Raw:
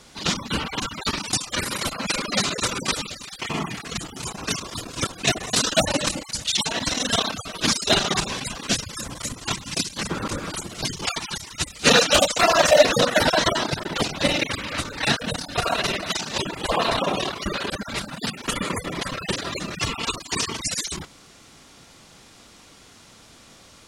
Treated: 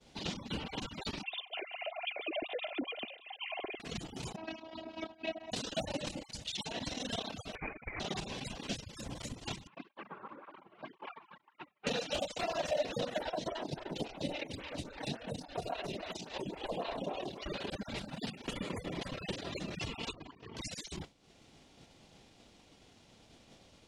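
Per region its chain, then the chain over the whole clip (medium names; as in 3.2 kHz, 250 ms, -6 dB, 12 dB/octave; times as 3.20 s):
1.23–3.80 s: formants replaced by sine waves + high-order bell 1.3 kHz -8.5 dB 1.2 oct + comb 2.9 ms, depth 53%
4.36–5.52 s: robot voice 321 Hz + cabinet simulation 100–3700 Hz, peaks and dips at 220 Hz +8 dB, 350 Hz -6 dB, 750 Hz +10 dB, 3.5 kHz -6 dB
7.55–8.00 s: high-pass 340 Hz + compressor with a negative ratio -22 dBFS, ratio -0.5 + frequency inversion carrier 2.7 kHz
9.67–11.87 s: cabinet simulation 480–2000 Hz, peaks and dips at 480 Hz -7 dB, 690 Hz -5 dB, 1.1 kHz +8 dB, 1.9 kHz -4 dB + cancelling through-zero flanger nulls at 1.9 Hz, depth 4.2 ms
13.18–17.49 s: de-hum 111.5 Hz, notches 24 + lamp-driven phase shifter 3.6 Hz
20.13–20.57 s: low-pass 1.8 kHz + hum notches 50/100/150/200/250/300/350/400/450 Hz + compressor with a negative ratio -42 dBFS
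whole clip: compression 2.5:1, threshold -43 dBFS; FFT filter 800 Hz 0 dB, 1.2 kHz -10 dB, 2.9 kHz -2 dB, 12 kHz -13 dB; expander -44 dBFS; trim +2 dB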